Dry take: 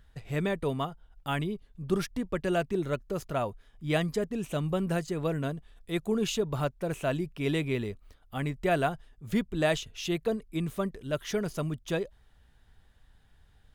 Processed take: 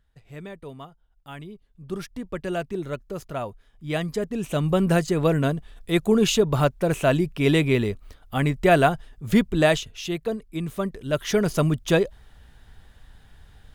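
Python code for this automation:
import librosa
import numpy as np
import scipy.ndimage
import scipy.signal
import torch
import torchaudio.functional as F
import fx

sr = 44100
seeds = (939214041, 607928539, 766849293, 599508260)

y = fx.gain(x, sr, db=fx.line((1.3, -9.0), (2.36, 0.0), (3.87, 0.0), (4.87, 9.5), (9.53, 9.5), (10.07, 2.0), (10.6, 2.0), (11.59, 11.0)))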